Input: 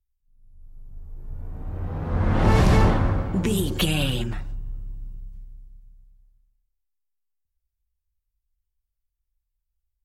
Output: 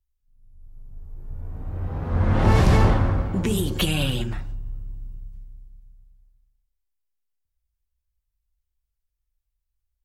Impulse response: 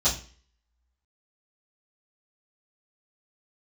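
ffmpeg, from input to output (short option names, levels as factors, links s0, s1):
-filter_complex "[0:a]asplit=2[s0][s1];[1:a]atrim=start_sample=2205,asetrate=38367,aresample=44100[s2];[s1][s2]afir=irnorm=-1:irlink=0,volume=0.0355[s3];[s0][s3]amix=inputs=2:normalize=0"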